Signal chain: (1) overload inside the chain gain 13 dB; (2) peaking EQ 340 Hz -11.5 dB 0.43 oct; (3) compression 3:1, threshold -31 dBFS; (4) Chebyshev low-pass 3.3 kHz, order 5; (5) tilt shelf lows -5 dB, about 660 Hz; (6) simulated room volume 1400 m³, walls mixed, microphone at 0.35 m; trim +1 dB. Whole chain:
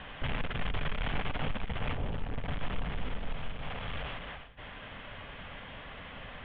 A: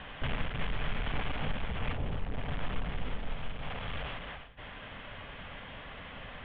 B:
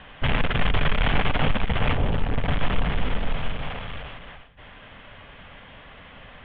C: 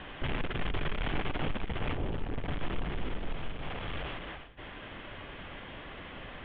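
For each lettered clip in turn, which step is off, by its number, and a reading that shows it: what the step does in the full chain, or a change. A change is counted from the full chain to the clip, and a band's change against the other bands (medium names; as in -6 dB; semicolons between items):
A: 1, distortion -11 dB; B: 3, mean gain reduction 6.5 dB; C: 2, 250 Hz band +2.5 dB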